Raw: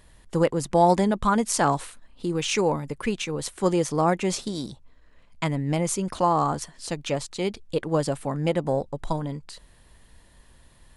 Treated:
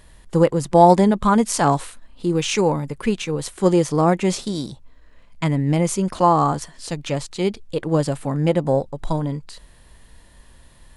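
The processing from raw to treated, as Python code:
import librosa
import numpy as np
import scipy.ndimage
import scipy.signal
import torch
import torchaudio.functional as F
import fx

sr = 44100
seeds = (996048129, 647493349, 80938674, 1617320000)

y = fx.hpss(x, sr, part='harmonic', gain_db=6)
y = F.gain(torch.from_numpy(y), 1.0).numpy()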